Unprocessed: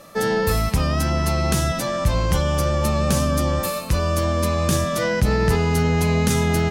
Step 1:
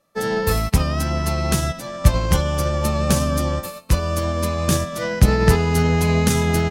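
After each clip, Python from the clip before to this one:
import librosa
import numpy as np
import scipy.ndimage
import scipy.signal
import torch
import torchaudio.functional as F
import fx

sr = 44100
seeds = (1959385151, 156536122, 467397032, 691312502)

y = fx.upward_expand(x, sr, threshold_db=-34.0, expansion=2.5)
y = y * librosa.db_to_amplitude(8.5)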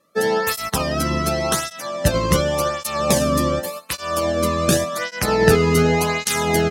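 y = fx.flanger_cancel(x, sr, hz=0.88, depth_ms=1.4)
y = y * librosa.db_to_amplitude(6.0)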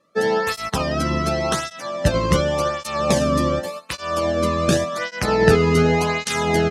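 y = fx.air_absorb(x, sr, metres=60.0)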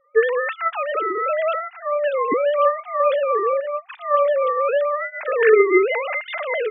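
y = fx.sine_speech(x, sr)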